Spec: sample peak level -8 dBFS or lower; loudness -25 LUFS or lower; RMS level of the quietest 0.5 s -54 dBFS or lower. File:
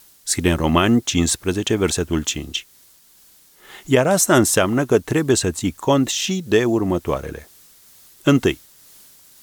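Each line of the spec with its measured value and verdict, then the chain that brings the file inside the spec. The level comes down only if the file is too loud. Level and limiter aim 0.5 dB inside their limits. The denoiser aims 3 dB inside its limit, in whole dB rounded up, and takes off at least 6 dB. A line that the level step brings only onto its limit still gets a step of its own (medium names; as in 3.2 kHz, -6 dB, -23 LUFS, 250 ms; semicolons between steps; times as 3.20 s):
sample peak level -2.0 dBFS: fail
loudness -19.0 LUFS: fail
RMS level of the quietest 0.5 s -52 dBFS: fail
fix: trim -6.5 dB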